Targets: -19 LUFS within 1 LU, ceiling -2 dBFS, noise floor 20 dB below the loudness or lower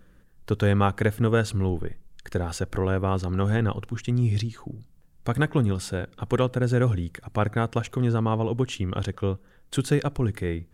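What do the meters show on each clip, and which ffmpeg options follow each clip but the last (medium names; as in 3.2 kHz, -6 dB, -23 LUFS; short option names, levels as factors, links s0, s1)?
loudness -26.0 LUFS; peak level -8.0 dBFS; loudness target -19.0 LUFS
-> -af "volume=2.24,alimiter=limit=0.794:level=0:latency=1"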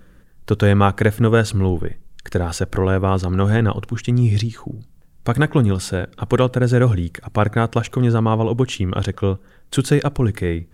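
loudness -19.0 LUFS; peak level -2.0 dBFS; noise floor -49 dBFS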